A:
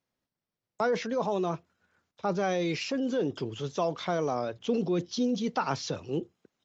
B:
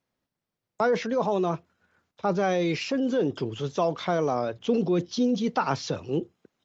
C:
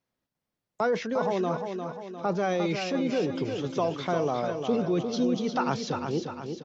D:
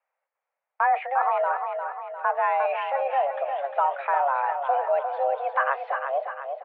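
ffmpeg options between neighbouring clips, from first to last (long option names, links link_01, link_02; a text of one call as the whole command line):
ffmpeg -i in.wav -af "highshelf=frequency=4200:gain=-5,volume=4dB" out.wav
ffmpeg -i in.wav -af "aecho=1:1:352|704|1056|1408|1760|2112:0.473|0.237|0.118|0.0591|0.0296|0.0148,volume=-2.5dB" out.wav
ffmpeg -i in.wav -af "highpass=frequency=290:width_type=q:width=0.5412,highpass=frequency=290:width_type=q:width=1.307,lowpass=frequency=2200:width_type=q:width=0.5176,lowpass=frequency=2200:width_type=q:width=0.7071,lowpass=frequency=2200:width_type=q:width=1.932,afreqshift=270,volume=4.5dB" out.wav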